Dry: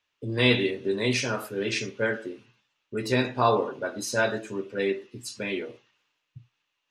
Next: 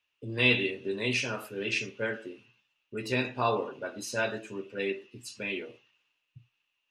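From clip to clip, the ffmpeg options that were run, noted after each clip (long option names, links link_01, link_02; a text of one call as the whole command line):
ffmpeg -i in.wav -af "equalizer=frequency=2700:width_type=o:width=0.34:gain=9.5,volume=-6dB" out.wav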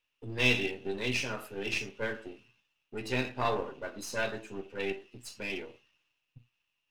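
ffmpeg -i in.wav -af "aeval=exprs='if(lt(val(0),0),0.447*val(0),val(0))':channel_layout=same" out.wav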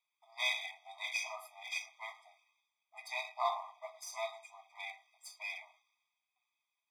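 ffmpeg -i in.wav -af "afftfilt=real='re*eq(mod(floor(b*sr/1024/640),2),1)':imag='im*eq(mod(floor(b*sr/1024/640),2),1)':win_size=1024:overlap=0.75,volume=-1.5dB" out.wav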